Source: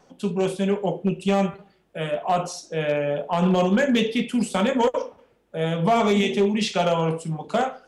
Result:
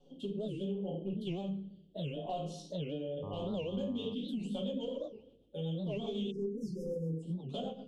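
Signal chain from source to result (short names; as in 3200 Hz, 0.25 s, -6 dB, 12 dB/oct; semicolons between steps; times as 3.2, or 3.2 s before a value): 6.58–7.13 CVSD 64 kbps; EQ curve 450 Hz 0 dB, 2100 Hz -30 dB, 3100 Hz +5 dB, 5100 Hz -12 dB; reverb RT60 0.40 s, pre-delay 3 ms, DRR -4.5 dB; rotary speaker horn 0.7 Hz, later 8 Hz, at 3.58; 0.75–1.22 high shelf 5800 Hz -10.5 dB; 3.22–4.13 buzz 100 Hz, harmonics 12, -32 dBFS -4 dB/oct; 6.31–7.23 spectral delete 530–4900 Hz; compressor 4:1, threshold -29 dBFS, peak gain reduction 15.5 dB; record warp 78 rpm, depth 250 cents; gain -7.5 dB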